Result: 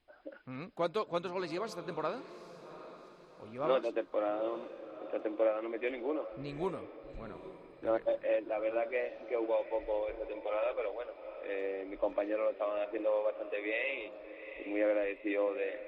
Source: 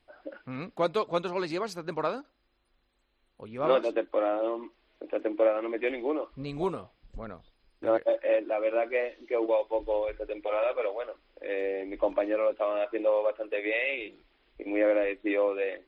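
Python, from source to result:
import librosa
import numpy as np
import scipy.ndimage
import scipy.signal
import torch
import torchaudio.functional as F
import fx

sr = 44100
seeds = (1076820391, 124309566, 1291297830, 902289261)

y = fx.echo_diffused(x, sr, ms=777, feedback_pct=47, wet_db=-13.0)
y = y * 10.0 ** (-6.0 / 20.0)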